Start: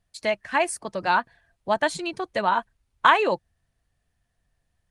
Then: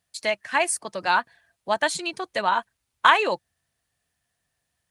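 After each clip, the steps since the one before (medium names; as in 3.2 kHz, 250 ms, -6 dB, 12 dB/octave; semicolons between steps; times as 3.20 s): high-pass 66 Hz; tilt EQ +2 dB/octave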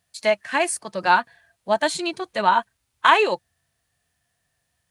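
harmonic-percussive split harmonic +9 dB; trim -2 dB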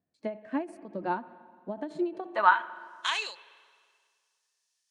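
band-pass sweep 280 Hz -> 5.7 kHz, 1.98–2.92 s; spring tank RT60 1.9 s, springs 43/58 ms, chirp 40 ms, DRR 17.5 dB; endings held to a fixed fall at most 170 dB/s; trim +4 dB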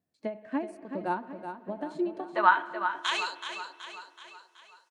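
feedback delay 376 ms, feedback 52%, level -9 dB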